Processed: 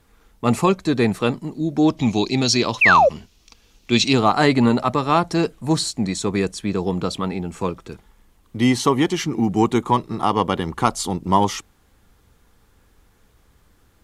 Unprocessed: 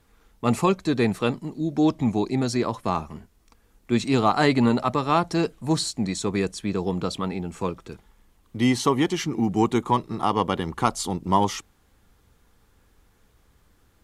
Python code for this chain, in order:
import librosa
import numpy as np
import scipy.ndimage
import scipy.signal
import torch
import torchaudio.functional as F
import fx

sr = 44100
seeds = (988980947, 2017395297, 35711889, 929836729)

y = fx.band_shelf(x, sr, hz=4000.0, db=12.0, octaves=1.7, at=(1.97, 4.13))
y = fx.spec_paint(y, sr, seeds[0], shape='fall', start_s=2.81, length_s=0.28, low_hz=490.0, high_hz=2800.0, level_db=-16.0)
y = y * 10.0 ** (3.5 / 20.0)